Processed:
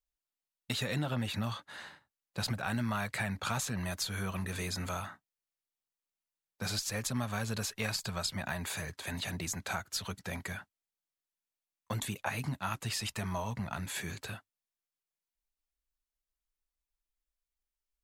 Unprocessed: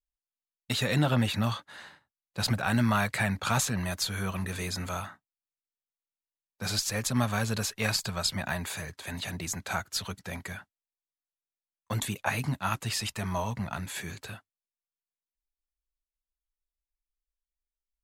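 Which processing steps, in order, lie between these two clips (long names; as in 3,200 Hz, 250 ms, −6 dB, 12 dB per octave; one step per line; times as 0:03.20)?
downward compressor 2.5 to 1, threshold −34 dBFS, peak gain reduction 9.5 dB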